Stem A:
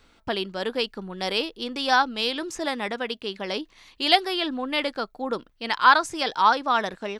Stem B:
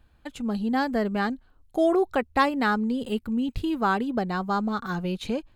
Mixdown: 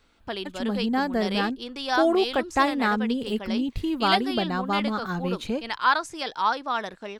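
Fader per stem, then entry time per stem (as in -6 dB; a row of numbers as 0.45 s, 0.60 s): -5.0 dB, 0.0 dB; 0.00 s, 0.20 s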